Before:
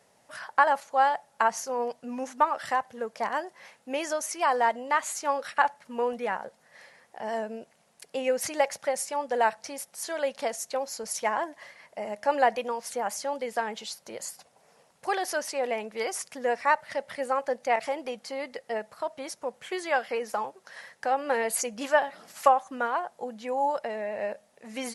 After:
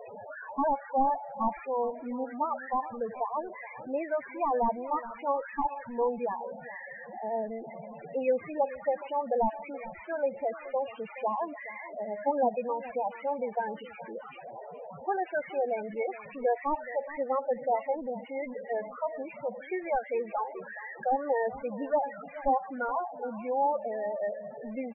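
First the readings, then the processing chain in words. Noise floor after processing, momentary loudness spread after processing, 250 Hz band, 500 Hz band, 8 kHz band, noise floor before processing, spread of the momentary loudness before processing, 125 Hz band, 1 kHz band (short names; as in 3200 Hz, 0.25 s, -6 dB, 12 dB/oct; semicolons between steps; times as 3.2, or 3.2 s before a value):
-47 dBFS, 12 LU, +1.5 dB, -1.0 dB, under -40 dB, -64 dBFS, 13 LU, n/a, -3.5 dB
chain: delta modulation 16 kbps, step -32 dBFS; loudest bins only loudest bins 8; on a send: echo 0.423 s -16 dB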